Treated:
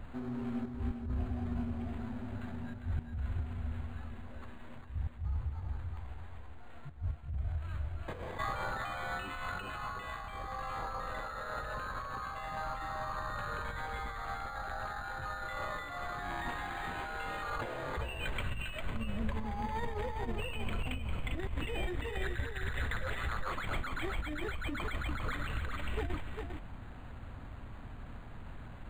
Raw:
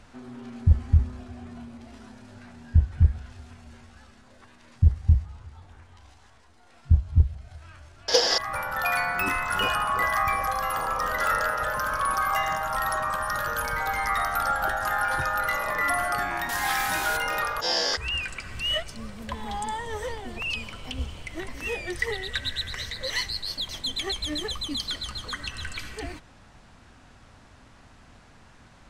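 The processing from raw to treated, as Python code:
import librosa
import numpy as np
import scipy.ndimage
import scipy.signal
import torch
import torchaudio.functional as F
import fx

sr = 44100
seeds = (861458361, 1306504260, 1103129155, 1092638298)

p1 = fx.low_shelf(x, sr, hz=140.0, db=8.5)
p2 = fx.over_compress(p1, sr, threshold_db=-33.0, ratio=-1.0)
p3 = p2 + fx.echo_single(p2, sr, ms=401, db=-5.5, dry=0)
p4 = np.interp(np.arange(len(p3)), np.arange(len(p3))[::8], p3[::8])
y = F.gain(torch.from_numpy(p4), -7.0).numpy()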